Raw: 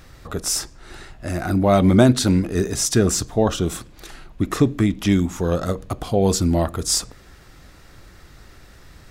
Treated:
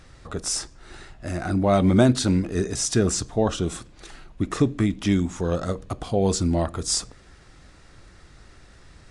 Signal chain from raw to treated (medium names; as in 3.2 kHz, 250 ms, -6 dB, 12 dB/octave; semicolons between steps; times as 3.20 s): trim -3.5 dB; AAC 64 kbps 22.05 kHz